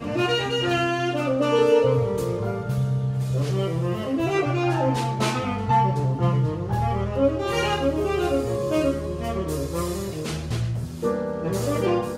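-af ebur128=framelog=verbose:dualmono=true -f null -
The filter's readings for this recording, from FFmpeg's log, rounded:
Integrated loudness:
  I:         -20.8 LUFS
  Threshold: -30.8 LUFS
Loudness range:
  LRA:         3.7 LU
  Threshold: -40.8 LUFS
  LRA low:   -23.4 LUFS
  LRA high:  -19.7 LUFS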